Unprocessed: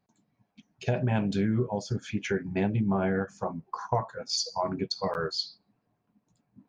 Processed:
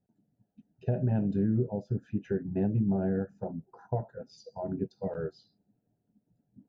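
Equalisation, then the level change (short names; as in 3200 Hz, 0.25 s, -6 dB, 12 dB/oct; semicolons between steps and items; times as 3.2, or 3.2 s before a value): running mean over 40 samples; 0.0 dB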